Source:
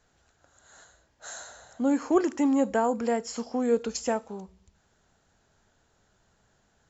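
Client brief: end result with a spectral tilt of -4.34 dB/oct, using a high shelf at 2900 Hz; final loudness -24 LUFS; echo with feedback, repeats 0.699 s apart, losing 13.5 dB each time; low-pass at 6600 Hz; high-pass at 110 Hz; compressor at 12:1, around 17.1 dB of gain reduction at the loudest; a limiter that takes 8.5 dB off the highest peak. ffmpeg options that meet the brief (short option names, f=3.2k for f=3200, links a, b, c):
-af "highpass=110,lowpass=6.6k,highshelf=f=2.9k:g=-7.5,acompressor=threshold=-35dB:ratio=12,alimiter=level_in=10dB:limit=-24dB:level=0:latency=1,volume=-10dB,aecho=1:1:699|1398:0.211|0.0444,volume=19.5dB"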